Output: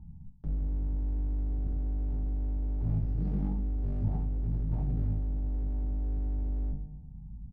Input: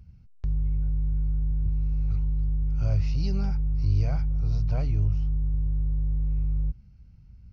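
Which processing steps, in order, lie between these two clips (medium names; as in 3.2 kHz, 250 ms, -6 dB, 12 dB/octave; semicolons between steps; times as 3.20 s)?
in parallel at +2.5 dB: compression 5:1, threshold -40 dBFS, peak gain reduction 19 dB; on the sum: FFT filter 130 Hz 0 dB, 230 Hz +9 dB, 500 Hz -20 dB, 920 Hz +8 dB, 1.4 kHz -28 dB; on a send: delay 972 ms -21 dB; on the sum: one-sided clip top -29.5 dBFS, bottom -15.5 dBFS; peaking EQ 1 kHz -6 dB 0.24 oct; feedback comb 150 Hz, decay 1.1 s, harmonics all, mix 60%; simulated room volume 37 m³, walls mixed, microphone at 0.45 m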